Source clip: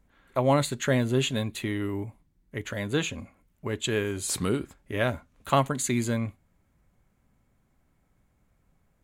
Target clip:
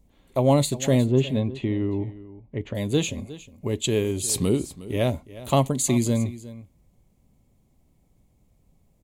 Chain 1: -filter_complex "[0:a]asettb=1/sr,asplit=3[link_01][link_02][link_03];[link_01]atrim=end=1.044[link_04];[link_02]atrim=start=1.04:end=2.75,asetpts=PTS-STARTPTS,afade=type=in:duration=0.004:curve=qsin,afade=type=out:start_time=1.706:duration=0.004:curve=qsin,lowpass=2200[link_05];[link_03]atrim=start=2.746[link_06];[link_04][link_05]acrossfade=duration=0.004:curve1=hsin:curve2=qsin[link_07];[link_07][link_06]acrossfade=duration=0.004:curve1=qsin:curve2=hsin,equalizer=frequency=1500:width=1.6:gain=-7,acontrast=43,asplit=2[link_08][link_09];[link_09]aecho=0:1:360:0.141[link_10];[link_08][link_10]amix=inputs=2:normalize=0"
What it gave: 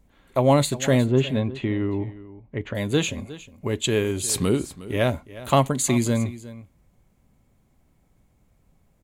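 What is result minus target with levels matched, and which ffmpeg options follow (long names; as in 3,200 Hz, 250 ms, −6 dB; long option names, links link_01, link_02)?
2,000 Hz band +5.0 dB
-filter_complex "[0:a]asettb=1/sr,asplit=3[link_01][link_02][link_03];[link_01]atrim=end=1.044[link_04];[link_02]atrim=start=1.04:end=2.75,asetpts=PTS-STARTPTS,afade=type=in:duration=0.004:curve=qsin,afade=type=out:start_time=1.706:duration=0.004:curve=qsin,lowpass=2200[link_05];[link_03]atrim=start=2.746[link_06];[link_04][link_05]acrossfade=duration=0.004:curve1=hsin:curve2=qsin[link_07];[link_07][link_06]acrossfade=duration=0.004:curve1=qsin:curve2=hsin,equalizer=frequency=1500:width=1.6:gain=-19,acontrast=43,asplit=2[link_08][link_09];[link_09]aecho=0:1:360:0.141[link_10];[link_08][link_10]amix=inputs=2:normalize=0"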